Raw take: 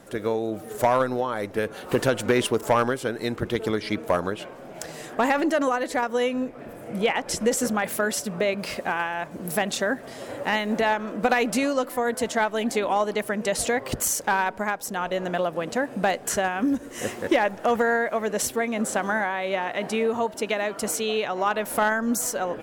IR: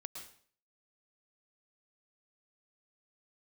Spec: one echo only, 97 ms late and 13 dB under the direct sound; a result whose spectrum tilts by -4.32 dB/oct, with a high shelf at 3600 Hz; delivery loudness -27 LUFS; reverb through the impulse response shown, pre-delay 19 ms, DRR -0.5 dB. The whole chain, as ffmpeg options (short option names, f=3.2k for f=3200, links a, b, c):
-filter_complex "[0:a]highshelf=f=3.6k:g=-6,aecho=1:1:97:0.224,asplit=2[a][b];[1:a]atrim=start_sample=2205,adelay=19[c];[b][c]afir=irnorm=-1:irlink=0,volume=3.5dB[d];[a][d]amix=inputs=2:normalize=0,volume=-4.5dB"